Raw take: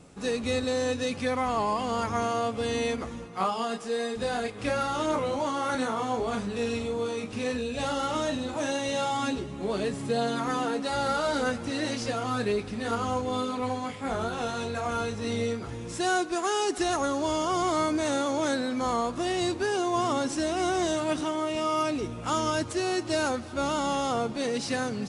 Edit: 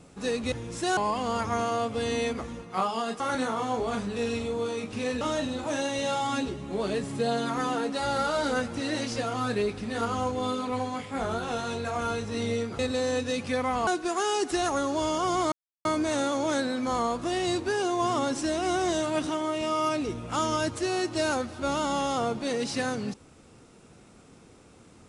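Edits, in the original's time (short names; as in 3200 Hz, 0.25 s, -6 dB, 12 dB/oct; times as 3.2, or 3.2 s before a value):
0.52–1.6 swap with 15.69–16.14
3.83–5.6 cut
7.61–8.11 cut
17.79 insert silence 0.33 s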